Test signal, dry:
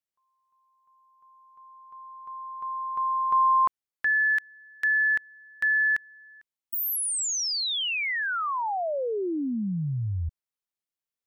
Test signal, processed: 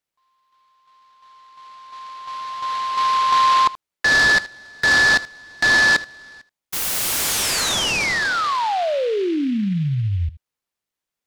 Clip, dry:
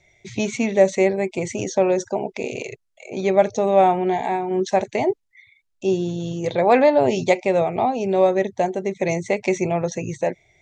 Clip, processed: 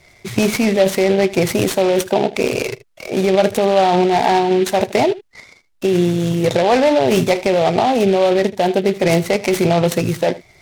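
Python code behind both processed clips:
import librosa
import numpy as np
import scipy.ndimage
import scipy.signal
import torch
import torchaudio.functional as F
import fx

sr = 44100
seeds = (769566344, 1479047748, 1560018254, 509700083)

p1 = fx.over_compress(x, sr, threshold_db=-22.0, ratio=-0.5)
p2 = x + (p1 * 10.0 ** (2.5 / 20.0))
p3 = p2 + 10.0 ** (-18.0 / 20.0) * np.pad(p2, (int(78 * sr / 1000.0), 0))[:len(p2)]
y = fx.noise_mod_delay(p3, sr, seeds[0], noise_hz=2500.0, depth_ms=0.04)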